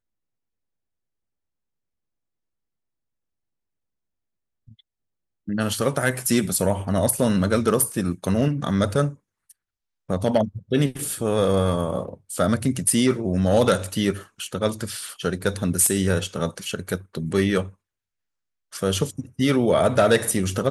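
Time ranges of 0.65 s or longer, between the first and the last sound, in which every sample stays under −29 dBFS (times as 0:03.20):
0:09.10–0:10.10
0:17.65–0:18.75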